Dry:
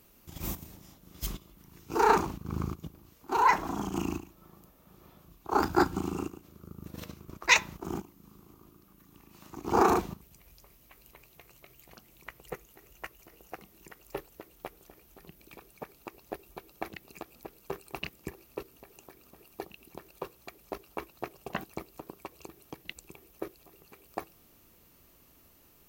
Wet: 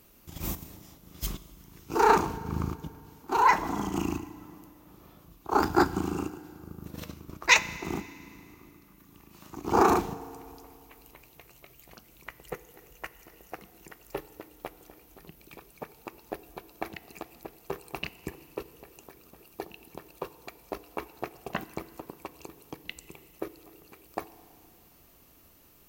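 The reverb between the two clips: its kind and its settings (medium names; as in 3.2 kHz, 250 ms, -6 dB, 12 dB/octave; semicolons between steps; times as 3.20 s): FDN reverb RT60 2.5 s, low-frequency decay 1.1×, high-frequency decay 0.9×, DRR 15.5 dB; trim +2 dB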